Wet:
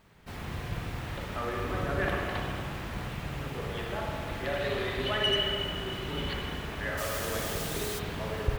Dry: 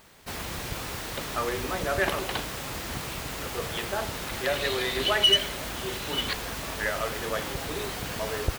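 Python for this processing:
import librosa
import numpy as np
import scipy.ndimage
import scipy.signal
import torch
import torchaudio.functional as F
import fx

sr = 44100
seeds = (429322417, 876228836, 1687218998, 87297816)

y = fx.bass_treble(x, sr, bass_db=7, treble_db=fx.steps((0.0, -8.0), (6.97, 10.0), (7.98, -6.0)))
y = fx.rev_spring(y, sr, rt60_s=2.2, pass_ms=(50, 57), chirp_ms=65, drr_db=-1.5)
y = F.gain(torch.from_numpy(y), -7.5).numpy()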